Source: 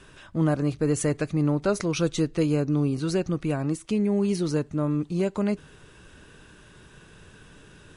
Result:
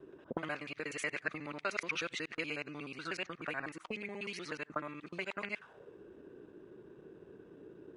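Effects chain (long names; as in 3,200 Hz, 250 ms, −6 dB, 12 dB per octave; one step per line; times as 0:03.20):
reversed piece by piece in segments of 61 ms
envelope filter 330–2,300 Hz, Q 3.2, up, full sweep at −21.5 dBFS
level +6.5 dB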